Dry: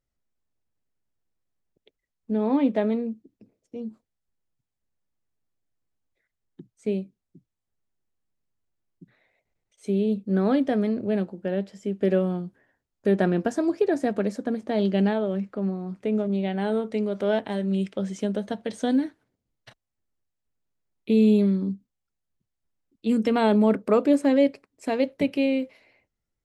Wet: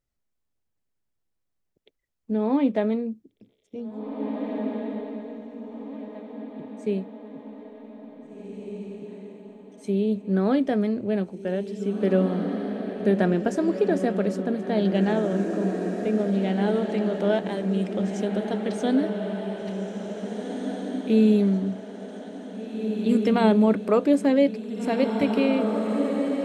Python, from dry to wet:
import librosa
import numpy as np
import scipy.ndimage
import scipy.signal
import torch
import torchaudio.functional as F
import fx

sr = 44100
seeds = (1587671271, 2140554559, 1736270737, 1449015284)

y = fx.echo_diffused(x, sr, ms=1944, feedback_pct=46, wet_db=-5.0)